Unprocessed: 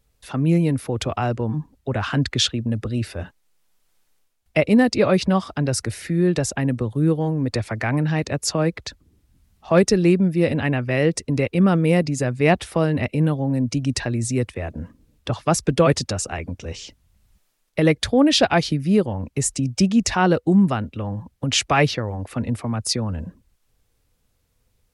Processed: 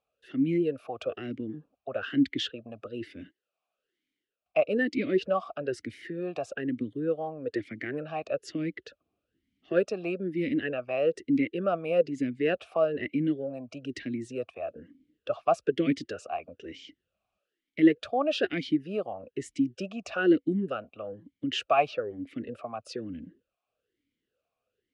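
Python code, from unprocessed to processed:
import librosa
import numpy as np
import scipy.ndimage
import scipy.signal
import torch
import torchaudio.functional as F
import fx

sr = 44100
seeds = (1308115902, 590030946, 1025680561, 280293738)

y = fx.vowel_sweep(x, sr, vowels='a-i', hz=1.1)
y = y * 10.0 ** (3.0 / 20.0)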